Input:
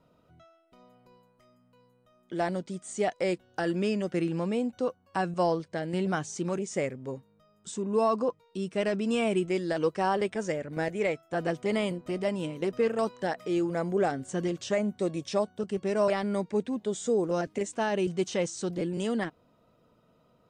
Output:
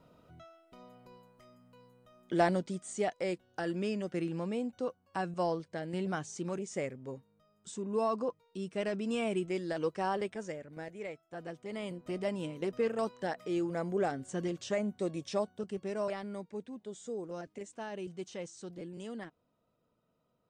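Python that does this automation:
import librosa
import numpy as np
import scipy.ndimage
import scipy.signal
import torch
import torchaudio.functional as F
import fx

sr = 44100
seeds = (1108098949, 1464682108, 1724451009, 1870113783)

y = fx.gain(x, sr, db=fx.line((2.36, 3.0), (3.2, -6.0), (10.16, -6.0), (10.85, -13.5), (11.69, -13.5), (12.09, -5.0), (15.47, -5.0), (16.51, -13.0)))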